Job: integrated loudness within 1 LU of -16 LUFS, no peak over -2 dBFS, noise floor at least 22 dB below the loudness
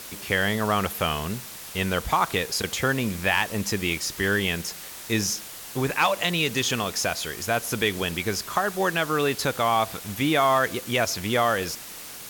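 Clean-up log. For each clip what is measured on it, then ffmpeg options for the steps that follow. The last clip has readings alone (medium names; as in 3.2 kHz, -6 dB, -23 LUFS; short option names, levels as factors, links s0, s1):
noise floor -40 dBFS; noise floor target -47 dBFS; loudness -25.0 LUFS; peak level -8.5 dBFS; loudness target -16.0 LUFS
-> -af "afftdn=nr=7:nf=-40"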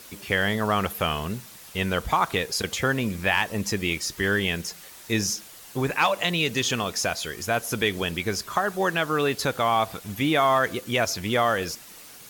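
noise floor -46 dBFS; noise floor target -47 dBFS
-> -af "afftdn=nr=6:nf=-46"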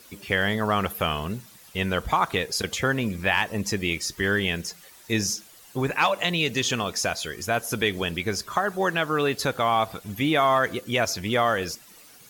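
noise floor -50 dBFS; loudness -25.0 LUFS; peak level -8.0 dBFS; loudness target -16.0 LUFS
-> -af "volume=2.82,alimiter=limit=0.794:level=0:latency=1"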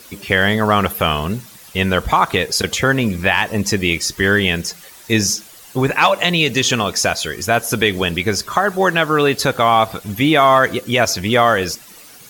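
loudness -16.5 LUFS; peak level -2.0 dBFS; noise floor -41 dBFS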